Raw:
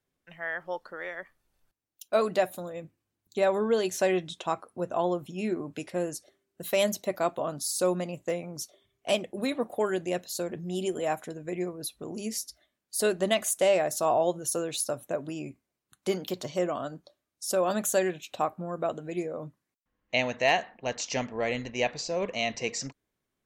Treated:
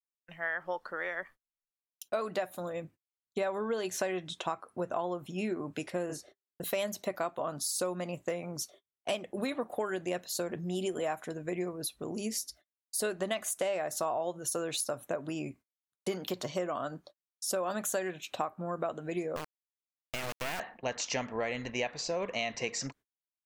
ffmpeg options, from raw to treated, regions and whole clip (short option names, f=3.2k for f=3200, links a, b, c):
-filter_complex "[0:a]asettb=1/sr,asplit=3[a][b][c];[a]atrim=end=6.064[d];[b]atrim=start=6.06:end=6.64,asetpts=PTS-STARTPTS,afade=t=in:d=0.004:c=qsin,afade=t=out:st=0.576:d=0.004:c=qsin,lowpass=f=4k:p=1,asplit=2[e][f];[f]adelay=33,volume=-3.5dB[g];[e][g]amix=inputs=2:normalize=0,atrim=end_sample=25578[h];[c]atrim=start=6.636[i];[d][h]acrossfade=d=0.004:c1=hsin:c2=qsin[j];[j][i]acrossfade=d=0.004:c1=qsin:c2=hsin,asettb=1/sr,asplit=3[k][l][m];[k]atrim=end=19.364[n];[l]atrim=start=19.36:end=20.6,asetpts=PTS-STARTPTS,afade=t=in:d=0.004:c=qsin,afade=t=out:st=1.236:d=0.004:c=qsin,bandreject=f=78.66:t=h:w=4,bandreject=f=157.32:t=h:w=4,bandreject=f=235.98:t=h:w=4,acompressor=threshold=-29dB:ratio=6:attack=3.2:release=140:knee=1:detection=peak,acrusher=bits=3:dc=4:mix=0:aa=0.000001[o];[m]atrim=start=20.596[p];[n][o]acrossfade=d=0.004:c1=hsin:c2=qsin[q];[q][p]acrossfade=d=0.004:c1=qsin:c2=hsin,agate=range=-35dB:threshold=-53dB:ratio=16:detection=peak,adynamicequalizer=threshold=0.01:dfrequency=1300:dqfactor=0.77:tfrequency=1300:tqfactor=0.77:attack=5:release=100:ratio=0.375:range=3:mode=boostabove:tftype=bell,acompressor=threshold=-30dB:ratio=6"